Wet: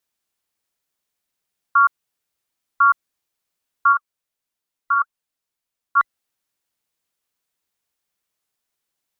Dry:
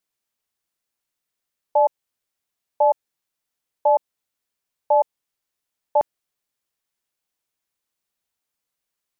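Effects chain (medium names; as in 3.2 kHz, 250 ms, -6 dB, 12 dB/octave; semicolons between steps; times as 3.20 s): every band turned upside down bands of 2 kHz; 3.92–5.97 s: flange 1.7 Hz, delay 0.8 ms, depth 3.3 ms, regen +78%; trim +2.5 dB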